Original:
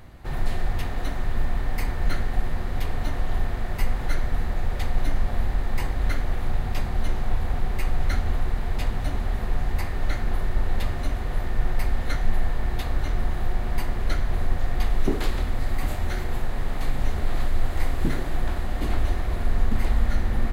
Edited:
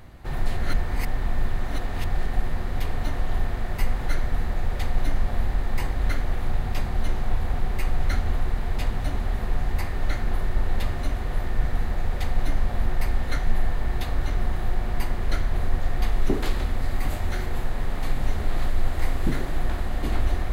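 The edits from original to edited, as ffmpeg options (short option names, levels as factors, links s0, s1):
-filter_complex "[0:a]asplit=5[s0][s1][s2][s3][s4];[s0]atrim=end=0.572[s5];[s1]atrim=start=0.568:end=2.262,asetpts=PTS-STARTPTS,areverse[s6];[s2]atrim=start=2.258:end=11.642[s7];[s3]atrim=start=4.228:end=5.452[s8];[s4]atrim=start=11.638[s9];[s5][s6]acrossfade=d=0.004:c1=hsin:c2=hsin[s10];[s10][s7]acrossfade=d=0.004:c1=hsin:c2=hsin[s11];[s11][s8]acrossfade=d=0.004:c1=hsin:c2=hsin[s12];[s12][s9]acrossfade=d=0.004:c1=hsin:c2=hsin"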